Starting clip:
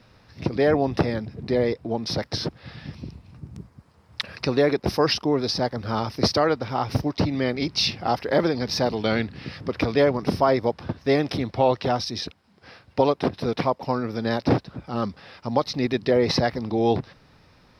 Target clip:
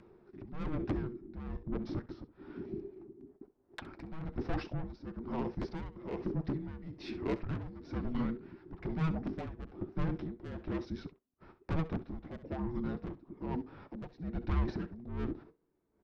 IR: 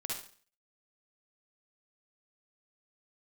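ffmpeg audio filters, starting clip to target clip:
-filter_complex "[0:a]agate=range=-24dB:threshold=-47dB:ratio=16:detection=peak,lowpass=1200,asplit=2[link_01][link_02];[link_02]acompressor=mode=upward:threshold=-24dB:ratio=2.5,volume=2dB[link_03];[link_01][link_03]amix=inputs=2:normalize=0,flanger=delay=2.2:depth=6.2:regen=-59:speed=0.31:shape=triangular,asoftclip=type=tanh:threshold=-19.5dB,asplit=2[link_04][link_05];[link_05]aecho=0:1:73:0.158[link_06];[link_04][link_06]amix=inputs=2:normalize=0,afreqshift=-430,asetrate=48951,aresample=44100,tremolo=f=1.1:d=0.76,volume=-8dB"

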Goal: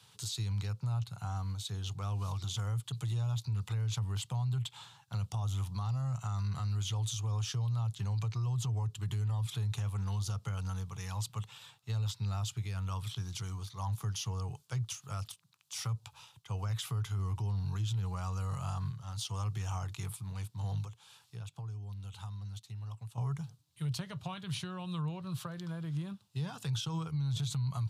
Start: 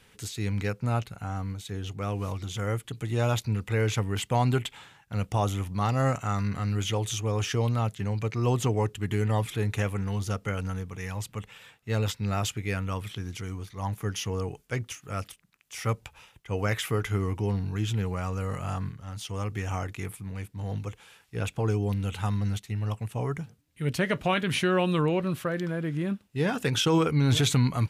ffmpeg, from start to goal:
ffmpeg -i in.wav -filter_complex "[0:a]acrossover=split=160[link_01][link_02];[link_02]acompressor=threshold=-34dB:ratio=10[link_03];[link_01][link_03]amix=inputs=2:normalize=0,equalizer=frequency=125:width_type=o:width=1:gain=8,equalizer=frequency=250:width_type=o:width=1:gain=-12,equalizer=frequency=500:width_type=o:width=1:gain=-7,equalizer=frequency=1000:width_type=o:width=1:gain=7,equalizer=frequency=2000:width_type=o:width=1:gain=-11,equalizer=frequency=4000:width_type=o:width=1:gain=9,equalizer=frequency=8000:width_type=o:width=1:gain=3,asettb=1/sr,asplit=3[link_04][link_05][link_06];[link_04]atrim=end=20.854[link_07];[link_05]atrim=start=20.85:end=23.18,asetpts=PTS-STARTPTS,afade=type=in:duration=0.004:curve=qsin,afade=type=out:start_time=2.326:duration=0.004:curve=qsin,acompressor=threshold=-45dB:ratio=2[link_08];[link_06]atrim=start=23.176[link_09];[link_07][link_08]acrossfade=duration=0.004:curve1=hsin:curve2=qsin[link_10];[link_10][link_09]acrossfade=duration=0.004:curve1=qsin:curve2=hsin,highpass=frequency=93:width=0.5412,highpass=frequency=93:width=1.3066,alimiter=level_in=0.5dB:limit=-24dB:level=0:latency=1:release=24,volume=-0.5dB,volume=-3.5dB" out.wav

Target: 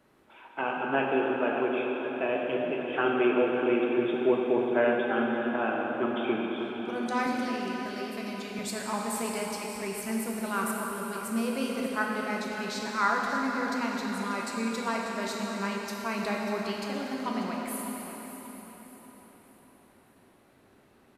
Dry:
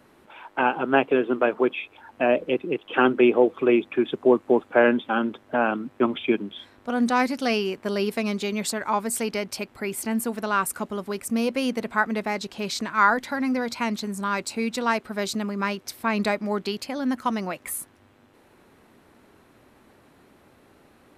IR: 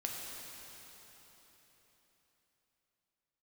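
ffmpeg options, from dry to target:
-filter_complex "[0:a]asettb=1/sr,asplit=3[link_01][link_02][link_03];[link_01]atrim=end=7.264[link_04];[link_02]atrim=start=7.26:end=8.59,asetpts=PTS-STARTPTS,afade=type=in:duration=0.004:curve=qsin,afade=type=out:start_time=1.326:duration=0.004:curve=qsin,acrossover=split=270|1400[link_05][link_06][link_07];[link_05]acompressor=threshold=-34dB:ratio=4[link_08];[link_06]acompressor=threshold=-36dB:ratio=4[link_09];[link_07]acompressor=threshold=-35dB:ratio=4[link_10];[link_08][link_09][link_10]amix=inputs=3:normalize=0[link_11];[link_03]atrim=start=8.586[link_12];[link_04][link_11]acrossfade=duration=0.004:curve1=hsin:curve2=qsin[link_13];[link_13][link_12]acrossfade=duration=0.004:curve1=qsin:curve2=hsin,aecho=1:1:590|1180|1770|2360:0.251|0.0955|0.0363|0.0138[link_14];[1:a]atrim=start_sample=2205[link_15];[link_14][link_15]afir=irnorm=-1:irlink=0,volume=-7dB"

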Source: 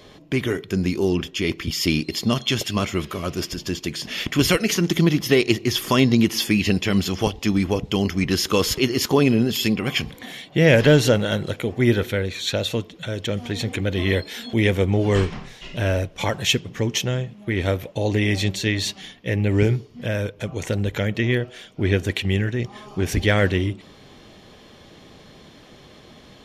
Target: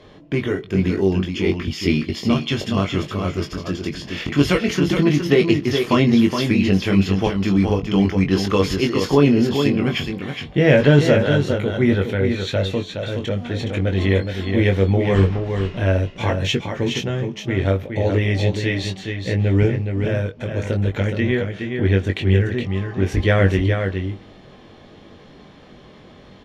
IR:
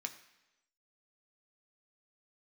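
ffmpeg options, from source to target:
-filter_complex "[0:a]aemphasis=mode=reproduction:type=75fm,asplit=2[link_01][link_02];[link_02]adelay=21,volume=-5dB[link_03];[link_01][link_03]amix=inputs=2:normalize=0,aecho=1:1:418:0.501"

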